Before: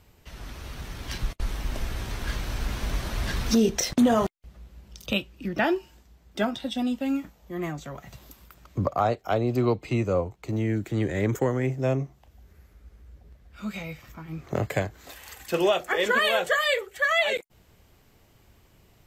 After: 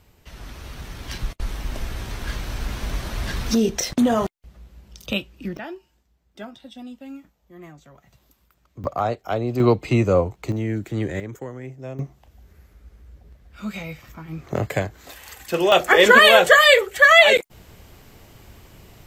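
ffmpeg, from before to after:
ffmpeg -i in.wav -af "asetnsamples=nb_out_samples=441:pad=0,asendcmd='5.57 volume volume -11dB;8.84 volume volume 0.5dB;9.6 volume volume 7dB;10.52 volume volume 1dB;11.2 volume volume -9.5dB;11.99 volume volume 3dB;15.72 volume volume 11.5dB',volume=1.5dB" out.wav

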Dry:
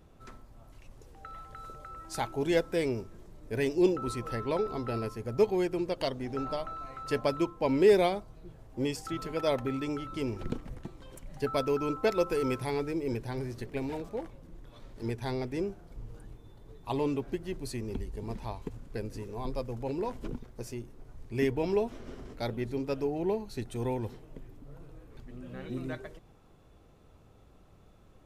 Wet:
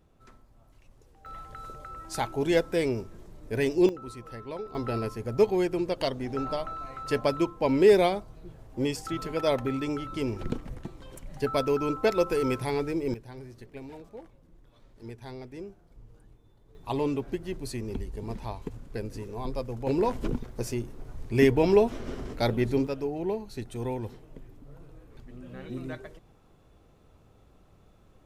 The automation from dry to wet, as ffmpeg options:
ffmpeg -i in.wav -af "asetnsamples=nb_out_samples=441:pad=0,asendcmd='1.26 volume volume 3dB;3.89 volume volume -7dB;4.75 volume volume 3dB;13.14 volume volume -8dB;16.75 volume volume 2dB;19.87 volume volume 8dB;22.87 volume volume 0dB',volume=-5.5dB" out.wav

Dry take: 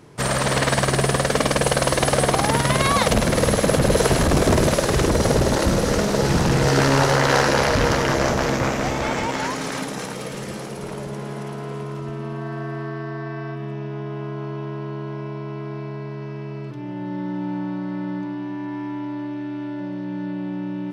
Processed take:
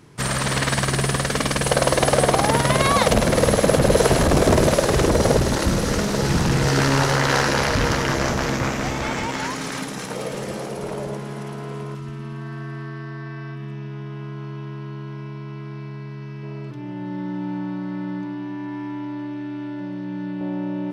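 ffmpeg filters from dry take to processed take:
ffmpeg -i in.wav -af "asetnsamples=nb_out_samples=441:pad=0,asendcmd='1.69 equalizer g 2.5;5.37 equalizer g -4.5;10.1 equalizer g 5;11.17 equalizer g -2.5;11.95 equalizer g -13;16.43 equalizer g -3.5;20.41 equalizer g 6',equalizer=frequency=580:width_type=o:width=1.3:gain=-6.5" out.wav

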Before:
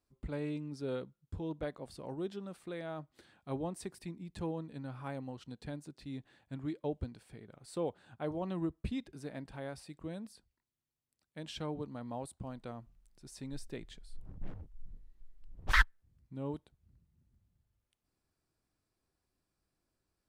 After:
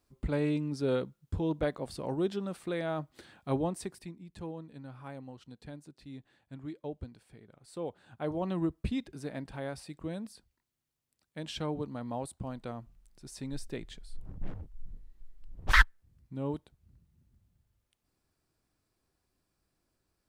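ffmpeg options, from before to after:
ffmpeg -i in.wav -af "volume=15.5dB,afade=type=out:start_time=3.49:duration=0.67:silence=0.281838,afade=type=in:start_time=7.77:duration=0.67:silence=0.421697" out.wav

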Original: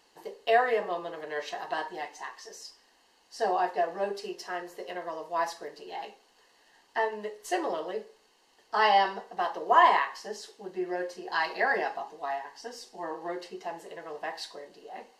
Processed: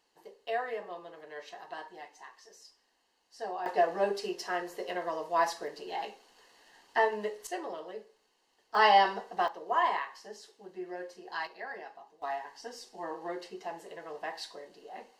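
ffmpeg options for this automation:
ffmpeg -i in.wav -af "asetnsamples=nb_out_samples=441:pad=0,asendcmd='3.66 volume volume 2dB;7.47 volume volume -8dB;8.75 volume volume 0.5dB;9.48 volume volume -8dB;11.47 volume volume -15dB;12.22 volume volume -2.5dB',volume=-10dB" out.wav

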